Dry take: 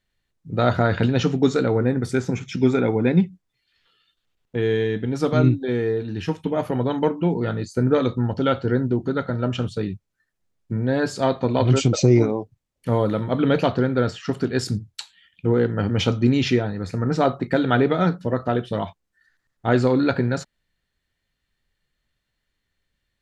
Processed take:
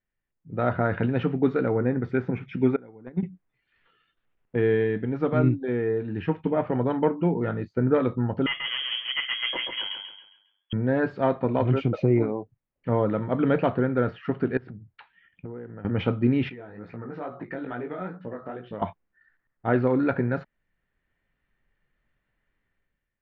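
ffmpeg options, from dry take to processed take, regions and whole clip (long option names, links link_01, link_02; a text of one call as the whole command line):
ffmpeg -i in.wav -filter_complex "[0:a]asettb=1/sr,asplit=3[link_01][link_02][link_03];[link_01]atrim=end=2.764[link_04];[link_02]atrim=start=2.76:end=3.23,asetpts=PTS-STARTPTS,afade=type=in:duration=0.004:curve=qsin,afade=type=out:start_time=0.466:duration=0.004:curve=qsin,agate=range=-23dB:threshold=-15dB:ratio=16:release=100:detection=peak,equalizer=frequency=2600:width=4.2:gain=-12.5,acompressor=threshold=-29dB:ratio=1.5:attack=3.2:release=140:knee=1:detection=peak[link_05];[link_03]atrim=start=3.226[link_06];[link_04][link_05]acrossfade=duration=0.004:curve1=hsin:curve2=qsin[link_07];[link_07][link_06]acrossfade=duration=0.004:curve1=qsin:curve2=hsin,asettb=1/sr,asplit=3[link_08][link_09][link_10];[link_08]atrim=end=8.464[link_11];[link_09]atrim=start=8.46:end=10.73,asetpts=PTS-STARTPTS,afade=type=in:duration=0.004:curve=qsin,afade=type=out:start_time=2.266:duration=0.004:curve=qsin,asoftclip=type=hard:threshold=-19dB,lowpass=frequency=2900:width_type=q:width=0.5098,lowpass=frequency=2900:width_type=q:width=0.6013,lowpass=frequency=2900:width_type=q:width=0.9,lowpass=frequency=2900:width_type=q:width=2.563,afreqshift=-3400,aecho=1:1:136|272|408|544|680:0.562|0.214|0.0812|0.0309|0.0117,atrim=end_sample=100107[link_12];[link_10]atrim=start=10.726[link_13];[link_11][link_12]acrossfade=duration=0.004:curve1=hsin:curve2=qsin[link_14];[link_14][link_13]acrossfade=duration=0.004:curve1=qsin:curve2=hsin,asettb=1/sr,asplit=3[link_15][link_16][link_17];[link_15]atrim=end=14.574[link_18];[link_16]atrim=start=14.57:end=15.85,asetpts=PTS-STARTPTS,afade=type=in:duration=0.004:curve=qsin,afade=type=out:start_time=1.276:duration=0.004:curve=qsin,lowpass=2400,acompressor=threshold=-34dB:ratio=8:attack=3.2:release=140:knee=1:detection=peak[link_19];[link_17]atrim=start=15.846[link_20];[link_18][link_19]acrossfade=duration=0.004:curve1=hsin:curve2=qsin[link_21];[link_21][link_20]acrossfade=duration=0.004:curve1=qsin:curve2=hsin,asettb=1/sr,asplit=3[link_22][link_23][link_24];[link_22]atrim=end=16.494[link_25];[link_23]atrim=start=16.49:end=18.82,asetpts=PTS-STARTPTS,afade=type=in:duration=0.004:curve=qsin,afade=type=out:start_time=2.326:duration=0.004:curve=qsin,lowshelf=frequency=130:gain=-11.5,acompressor=threshold=-32dB:ratio=4:attack=3.2:release=140:knee=1:detection=peak,flanger=delay=16.5:depth=5.4:speed=2.3[link_26];[link_24]atrim=start=18.816[link_27];[link_25][link_26]acrossfade=duration=0.004:curve1=hsin:curve2=qsin[link_28];[link_28][link_27]acrossfade=duration=0.004:curve1=qsin:curve2=hsin,lowpass=frequency=2400:width=0.5412,lowpass=frequency=2400:width=1.3066,equalizer=frequency=73:width=1.3:gain=-5,dynaudnorm=framelen=150:gausssize=7:maxgain=11.5dB,volume=-8.5dB" out.wav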